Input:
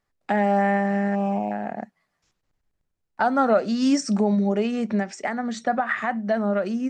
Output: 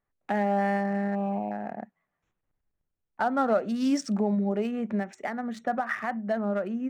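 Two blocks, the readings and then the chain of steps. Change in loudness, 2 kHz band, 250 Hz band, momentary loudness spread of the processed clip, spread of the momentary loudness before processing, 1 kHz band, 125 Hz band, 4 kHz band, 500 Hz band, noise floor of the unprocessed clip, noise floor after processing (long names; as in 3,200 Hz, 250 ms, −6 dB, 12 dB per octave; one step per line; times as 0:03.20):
−5.0 dB, −6.0 dB, −5.0 dB, 8 LU, 8 LU, −5.5 dB, can't be measured, −8.0 dB, −5.0 dB, −77 dBFS, −83 dBFS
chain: adaptive Wiener filter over 9 samples
level −5 dB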